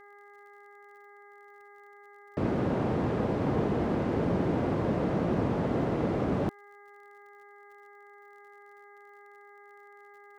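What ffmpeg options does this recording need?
-af "adeclick=t=4,bandreject=f=407.5:t=h:w=4,bandreject=f=815:t=h:w=4,bandreject=f=1222.5:t=h:w=4,bandreject=f=1630:t=h:w=4,bandreject=f=2037.5:t=h:w=4"

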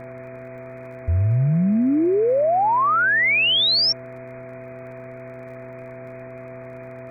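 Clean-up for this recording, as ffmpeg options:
-af "adeclick=t=4,bandreject=f=125.3:t=h:w=4,bandreject=f=250.6:t=h:w=4,bandreject=f=375.9:t=h:w=4,bandreject=f=501.2:t=h:w=4,bandreject=f=660:w=30,afwtdn=0.013"

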